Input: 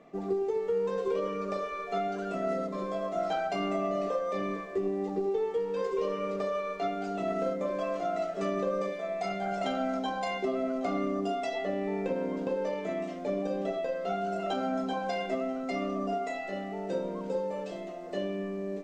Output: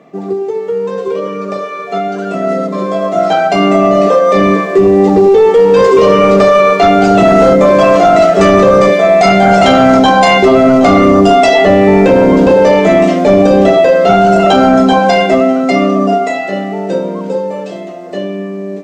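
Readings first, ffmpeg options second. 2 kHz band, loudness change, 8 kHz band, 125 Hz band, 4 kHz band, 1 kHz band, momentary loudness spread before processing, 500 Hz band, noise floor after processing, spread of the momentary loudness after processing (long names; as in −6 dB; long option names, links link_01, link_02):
+25.0 dB, +24.0 dB, can't be measured, +25.0 dB, +24.5 dB, +24.0 dB, 4 LU, +23.0 dB, −22 dBFS, 12 LU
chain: -af "highpass=frequency=100:width=0.5412,highpass=frequency=100:width=1.3066,lowshelf=frequency=130:gain=6.5,bandreject=frequency=251.2:width_type=h:width=4,bandreject=frequency=502.4:width_type=h:width=4,dynaudnorm=framelen=490:gausssize=17:maxgain=16.5dB,apsyclip=14dB,volume=-1.5dB"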